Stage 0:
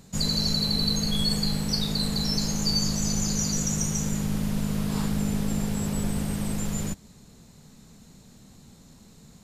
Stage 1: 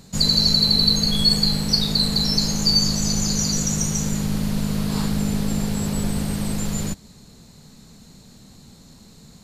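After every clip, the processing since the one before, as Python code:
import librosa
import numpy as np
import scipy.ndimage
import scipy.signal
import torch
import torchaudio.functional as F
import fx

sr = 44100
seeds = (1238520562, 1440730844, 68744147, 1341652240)

y = fx.peak_eq(x, sr, hz=4300.0, db=6.5, octaves=0.29)
y = y * librosa.db_to_amplitude(4.0)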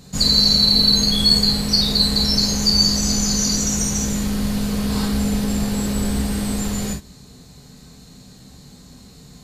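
y = fx.rev_gated(x, sr, seeds[0], gate_ms=80, shape='flat', drr_db=0.0)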